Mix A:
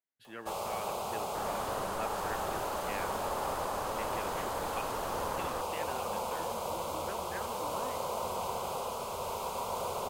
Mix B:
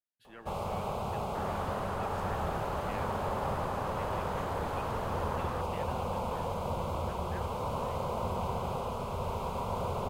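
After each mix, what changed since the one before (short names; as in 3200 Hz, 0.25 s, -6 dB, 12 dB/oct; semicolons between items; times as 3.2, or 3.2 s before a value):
speech -5.5 dB; first sound: add tone controls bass +14 dB, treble -11 dB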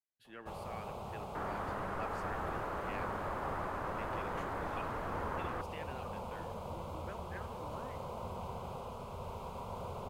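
first sound -9.0 dB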